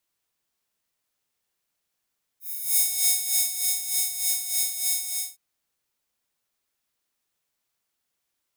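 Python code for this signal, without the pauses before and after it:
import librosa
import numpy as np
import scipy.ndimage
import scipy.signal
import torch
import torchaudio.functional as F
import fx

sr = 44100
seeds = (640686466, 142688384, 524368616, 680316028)

y = fx.sub_patch_tremolo(sr, seeds[0], note=78, wave='square', wave2='saw', interval_st=-12, detune_cents=11, level2_db=-12.5, sub_db=-15.0, noise_db=-12.5, kind='highpass', cutoff_hz=7700.0, q=0.97, env_oct=1.0, env_decay_s=0.53, env_sustain_pct=5, attack_ms=308.0, decay_s=0.98, sustain_db=-5, release_s=0.3, note_s=2.67, lfo_hz=3.3, tremolo_db=10)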